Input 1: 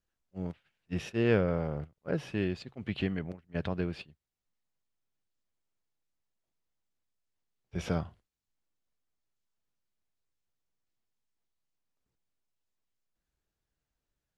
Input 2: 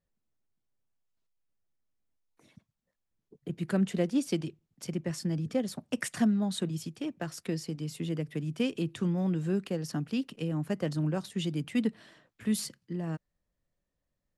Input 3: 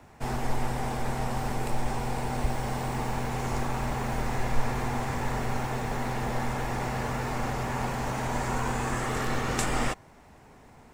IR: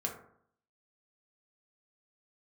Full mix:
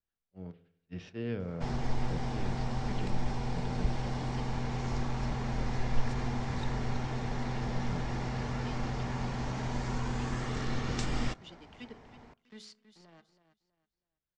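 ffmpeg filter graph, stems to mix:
-filter_complex "[0:a]volume=-11dB,asplit=2[link_01][link_02];[link_02]volume=-9dB[link_03];[1:a]highpass=frequency=850:poles=1,aeval=exprs='sgn(val(0))*max(abs(val(0))-0.00422,0)':channel_layout=same,adelay=50,volume=-10dB,asplit=3[link_04][link_05][link_06];[link_05]volume=-12.5dB[link_07];[link_06]volume=-10.5dB[link_08];[2:a]adelay=1400,volume=-2.5dB,asplit=2[link_09][link_10];[link_10]volume=-20dB[link_11];[3:a]atrim=start_sample=2205[link_12];[link_03][link_07][link_11]amix=inputs=3:normalize=0[link_13];[link_13][link_12]afir=irnorm=-1:irlink=0[link_14];[link_08]aecho=0:1:324|648|972|1296:1|0.26|0.0676|0.0176[link_15];[link_01][link_04][link_09][link_14][link_15]amix=inputs=5:normalize=0,acrossover=split=310|3000[link_16][link_17][link_18];[link_17]acompressor=threshold=-40dB:ratio=6[link_19];[link_16][link_19][link_18]amix=inputs=3:normalize=0,lowpass=frequency=5700:width=0.5412,lowpass=frequency=5700:width=1.3066,bandreject=frequency=2600:width=30"

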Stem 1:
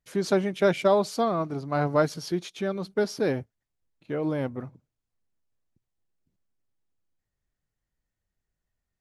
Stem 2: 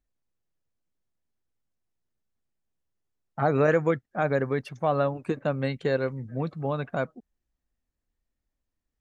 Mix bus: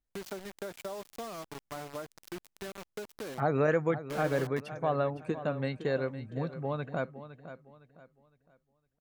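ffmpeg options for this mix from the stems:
ffmpeg -i stem1.wav -i stem2.wav -filter_complex "[0:a]highpass=frequency=220:poles=1,acrusher=bits=4:mix=0:aa=0.000001,acompressor=threshold=-29dB:ratio=5,volume=-8.5dB[link_01];[1:a]volume=-5dB,asplit=2[link_02][link_03];[link_03]volume=-13dB,aecho=0:1:510|1020|1530|2040|2550:1|0.32|0.102|0.0328|0.0105[link_04];[link_01][link_02][link_04]amix=inputs=3:normalize=0" out.wav

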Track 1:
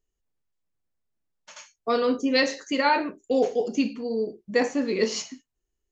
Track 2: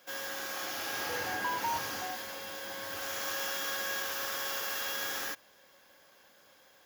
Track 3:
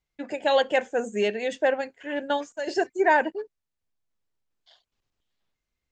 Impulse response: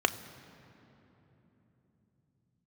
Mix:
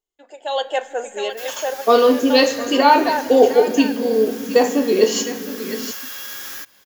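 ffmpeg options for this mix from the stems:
-filter_complex "[0:a]dynaudnorm=framelen=220:gausssize=5:maxgain=16dB,volume=-15.5dB,asplit=3[link_01][link_02][link_03];[link_02]volume=-4.5dB[link_04];[link_03]volume=-8dB[link_05];[1:a]equalizer=frequency=630:width_type=o:width=1.2:gain=-8.5,acompressor=threshold=-40dB:ratio=3,adelay=1300,volume=-4.5dB[link_06];[2:a]highpass=560,volume=-10.5dB,asplit=3[link_07][link_08][link_09];[link_08]volume=-13.5dB[link_10];[link_09]volume=-8dB[link_11];[3:a]atrim=start_sample=2205[link_12];[link_04][link_10]amix=inputs=2:normalize=0[link_13];[link_13][link_12]afir=irnorm=-1:irlink=0[link_14];[link_05][link_11]amix=inputs=2:normalize=0,aecho=0:1:711:1[link_15];[link_01][link_06][link_07][link_14][link_15]amix=inputs=5:normalize=0,highshelf=frequency=5900:gain=5.5,dynaudnorm=framelen=390:gausssize=3:maxgain=11.5dB"

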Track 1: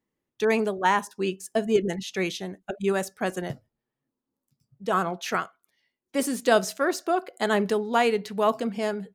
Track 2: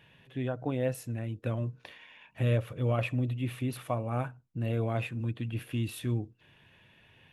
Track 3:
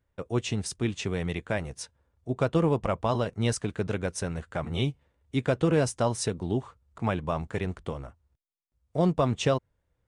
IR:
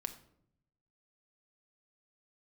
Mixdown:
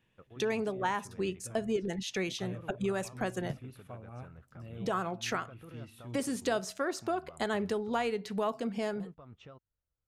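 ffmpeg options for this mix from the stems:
-filter_complex "[0:a]lowpass=11000,volume=2.5dB[link_01];[1:a]volume=-19dB,asplit=2[link_02][link_03];[link_03]volume=-5dB[link_04];[2:a]lowpass=3100,equalizer=frequency=1300:width=6.4:gain=10.5,alimiter=limit=-23.5dB:level=0:latency=1:release=233,volume=-19.5dB[link_05];[link_01][link_02]amix=inputs=2:normalize=0,acompressor=threshold=-35dB:ratio=2.5,volume=0dB[link_06];[3:a]atrim=start_sample=2205[link_07];[link_04][link_07]afir=irnorm=-1:irlink=0[link_08];[link_05][link_06][link_08]amix=inputs=3:normalize=0,lowshelf=frequency=72:gain=8.5"

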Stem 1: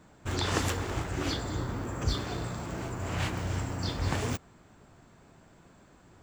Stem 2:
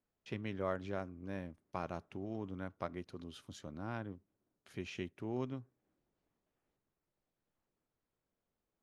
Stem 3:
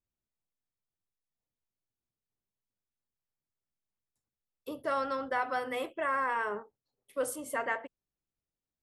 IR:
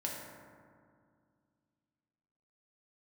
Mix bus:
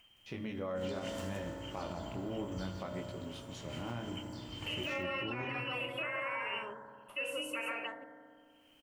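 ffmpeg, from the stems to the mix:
-filter_complex "[0:a]highshelf=frequency=6000:gain=5,adelay=500,volume=-9.5dB,asplit=3[link_01][link_02][link_03];[link_02]volume=-8.5dB[link_04];[link_03]volume=-15.5dB[link_05];[1:a]flanger=delay=18:depth=7.2:speed=0.65,volume=1.5dB,asplit=2[link_06][link_07];[link_07]volume=-3dB[link_08];[2:a]acompressor=mode=upward:threshold=-43dB:ratio=2.5,volume=1.5dB,asplit=4[link_09][link_10][link_11][link_12];[link_10]volume=-12.5dB[link_13];[link_11]volume=-13dB[link_14];[link_12]apad=whole_len=296612[link_15];[link_01][link_15]sidechaingate=range=-33dB:threshold=-60dB:ratio=16:detection=peak[link_16];[link_16][link_09]amix=inputs=2:normalize=0,lowpass=frequency=2700:width_type=q:width=0.5098,lowpass=frequency=2700:width_type=q:width=0.6013,lowpass=frequency=2700:width_type=q:width=0.9,lowpass=frequency=2700:width_type=q:width=2.563,afreqshift=-3200,alimiter=level_in=5dB:limit=-24dB:level=0:latency=1,volume=-5dB,volume=0dB[link_17];[3:a]atrim=start_sample=2205[link_18];[link_04][link_08][link_13]amix=inputs=3:normalize=0[link_19];[link_19][link_18]afir=irnorm=-1:irlink=0[link_20];[link_05][link_14]amix=inputs=2:normalize=0,aecho=0:1:168:1[link_21];[link_06][link_17][link_20][link_21]amix=inputs=4:normalize=0,equalizer=frequency=1600:width=6.1:gain=-3.5,alimiter=level_in=4.5dB:limit=-24dB:level=0:latency=1:release=112,volume=-4.5dB"

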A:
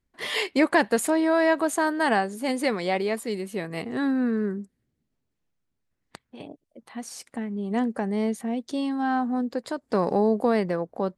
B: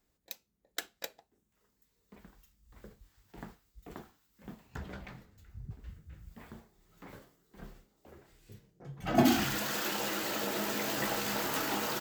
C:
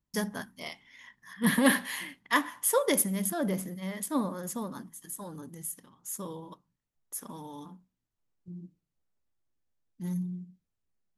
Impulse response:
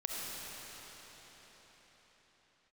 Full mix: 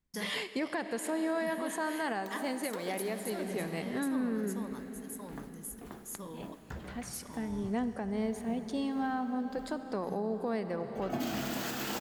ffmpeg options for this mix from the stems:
-filter_complex "[0:a]volume=-7.5dB,asplit=3[link_01][link_02][link_03];[link_02]volume=-10.5dB[link_04];[1:a]adelay=1950,volume=-3.5dB,asplit=2[link_05][link_06];[link_06]volume=-7dB[link_07];[2:a]acompressor=threshold=-33dB:ratio=2,volume=-6dB,asplit=2[link_08][link_09];[link_09]volume=-18.5dB[link_10];[link_03]apad=whole_len=619671[link_11];[link_05][link_11]sidechaincompress=threshold=-36dB:ratio=8:attack=16:release=1110[link_12];[3:a]atrim=start_sample=2205[link_13];[link_04][link_07][link_10]amix=inputs=3:normalize=0[link_14];[link_14][link_13]afir=irnorm=-1:irlink=0[link_15];[link_01][link_12][link_08][link_15]amix=inputs=4:normalize=0,alimiter=level_in=0.5dB:limit=-24dB:level=0:latency=1:release=340,volume=-0.5dB"

